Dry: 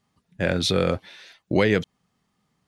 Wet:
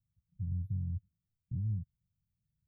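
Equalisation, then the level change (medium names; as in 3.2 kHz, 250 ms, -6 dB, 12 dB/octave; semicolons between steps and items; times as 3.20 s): inverse Chebyshev band-stop 510–8600 Hz, stop band 70 dB; -2.0 dB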